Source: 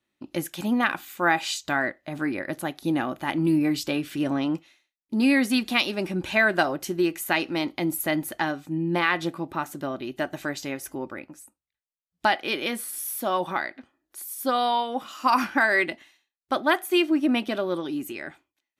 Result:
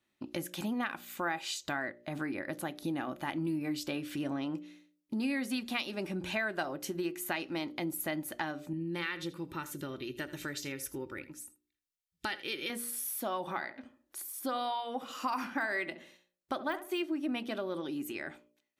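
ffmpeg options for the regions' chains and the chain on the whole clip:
ffmpeg -i in.wav -filter_complex "[0:a]asettb=1/sr,asplit=3[link_01][link_02][link_03];[link_01]atrim=end=8.734[link_04];[link_02]atrim=start=8.73:end=12.7,asetpts=PTS-STARTPTS,afade=type=in:duration=0.004:curve=qsin,afade=type=out:start_time=3.966:duration=0.004:curve=qsin,equalizer=frequency=760:width_type=o:width=1.3:gain=-14,aecho=1:1:2.2:0.46,atrim=end_sample=175077,aecho=1:1:81:0.133,atrim=end_sample=175077[link_05];[link_03]atrim=start=12.696[link_06];[link_04][link_05]acrossfade=duration=0.004:curve1=hsin:curve2=qsin[link_07];[link_07][link_06]acrossfade=duration=0.004:curve1=qsin:curve2=hsin,asettb=1/sr,asplit=3[link_08][link_09][link_10];[link_08]atrim=end=13.404[link_11];[link_09]atrim=start=13.4:end=17.03,asetpts=PTS-STARTPTS,afade=type=in:duration=0.004:curve=qsin,afade=type=out:start_time=3.626:duration=0.004:curve=qsin,deesser=0.65,asplit=2[link_12][link_13];[link_13]adelay=69,lowpass=frequency=1100:poles=1,volume=-12dB,asplit=2[link_14][link_15];[link_15]adelay=69,lowpass=frequency=1100:poles=1,volume=0.32,asplit=2[link_16][link_17];[link_17]adelay=69,lowpass=frequency=1100:poles=1,volume=0.32[link_18];[link_12][link_14][link_16][link_18]amix=inputs=4:normalize=0,atrim=end_sample=160083[link_19];[link_10]atrim=start=17.026[link_20];[link_11][link_19]acrossfade=duration=0.004:curve1=hsin:curve2=qsin[link_21];[link_21][link_20]acrossfade=duration=0.004:curve1=qsin:curve2=hsin,bandreject=frequency=59.59:width_type=h:width=4,bandreject=frequency=119.18:width_type=h:width=4,bandreject=frequency=178.77:width_type=h:width=4,bandreject=frequency=238.36:width_type=h:width=4,bandreject=frequency=297.95:width_type=h:width=4,bandreject=frequency=357.54:width_type=h:width=4,bandreject=frequency=417.13:width_type=h:width=4,bandreject=frequency=476.72:width_type=h:width=4,bandreject=frequency=536.31:width_type=h:width=4,bandreject=frequency=595.9:width_type=h:width=4,acompressor=threshold=-37dB:ratio=2.5" out.wav

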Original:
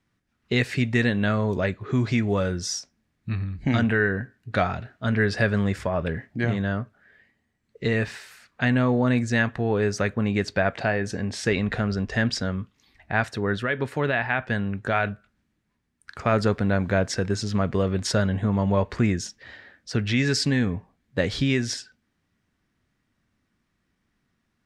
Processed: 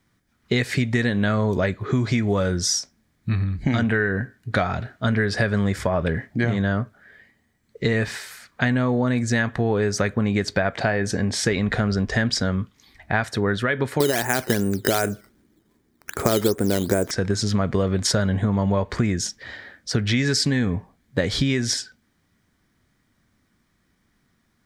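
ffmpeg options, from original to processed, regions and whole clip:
ffmpeg -i in.wav -filter_complex "[0:a]asettb=1/sr,asplit=3[link_01][link_02][link_03];[link_01]atrim=end=14.004[link_04];[link_02]atrim=start=14:end=17.11,asetpts=PTS-STARTPTS,afade=type=in:duration=0.004:curve=qsin,afade=type=out:start_time=3.106:duration=0.004:curve=qsin,equalizer=frequency=360:width_type=o:width=1.1:gain=14,acrusher=samples=9:mix=1:aa=0.000001:lfo=1:lforange=9:lforate=2.6[link_05];[link_03]atrim=start=17.106[link_06];[link_04][link_05]acrossfade=duration=0.004:curve1=hsin:curve2=qsin[link_07];[link_07][link_06]acrossfade=duration=0.004:curve1=qsin:curve2=hsin,highshelf=frequency=8200:gain=7,bandreject=frequency=2700:width=9.9,acompressor=threshold=-24dB:ratio=6,volume=6.5dB" out.wav

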